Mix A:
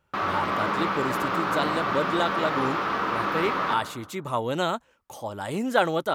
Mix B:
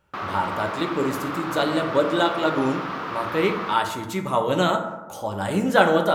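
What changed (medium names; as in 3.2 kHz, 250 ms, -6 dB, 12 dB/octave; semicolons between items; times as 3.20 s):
speech: send on; background: send -11.5 dB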